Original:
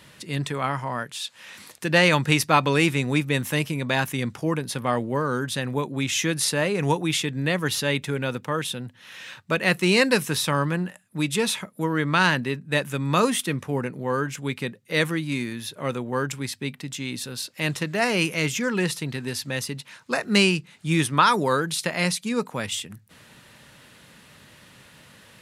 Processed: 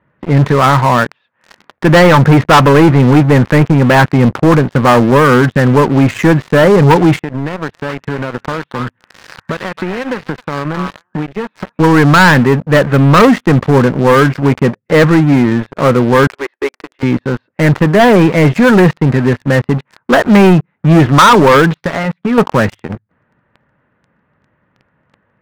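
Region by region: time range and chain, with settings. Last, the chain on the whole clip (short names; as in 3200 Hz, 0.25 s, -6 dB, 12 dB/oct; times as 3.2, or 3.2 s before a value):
7.19–11.8 HPF 54 Hz + compressor, threshold -36 dBFS + delay with a stepping band-pass 0.266 s, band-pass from 1200 Hz, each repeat 1.4 oct, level -0.5 dB
16.27–17.03 Chebyshev high-pass 340 Hz, order 5 + high shelf 4900 Hz -5 dB
21.77–22.38 comb 7.1 ms, depth 52% + compressor 8:1, threshold -30 dBFS
whole clip: LPF 1700 Hz 24 dB/oct; sample leveller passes 5; gain +3.5 dB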